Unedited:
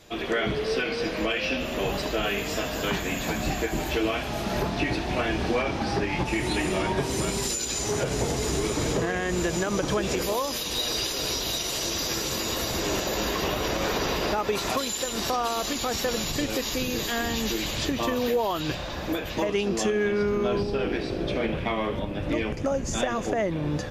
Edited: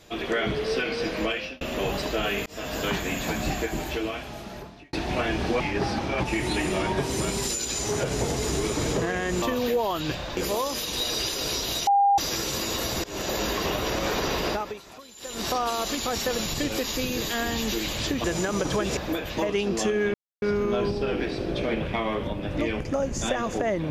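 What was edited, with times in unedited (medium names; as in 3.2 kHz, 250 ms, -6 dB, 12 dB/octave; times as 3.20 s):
1.28–1.61 s: fade out
2.46–2.74 s: fade in
3.51–4.93 s: fade out
5.60–6.20 s: reverse
9.42–10.15 s: swap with 18.02–18.97 s
11.65–11.96 s: bleep 802 Hz -16 dBFS
12.82–13.07 s: fade in, from -23 dB
14.26–15.26 s: dip -18.5 dB, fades 0.32 s
20.14 s: insert silence 0.28 s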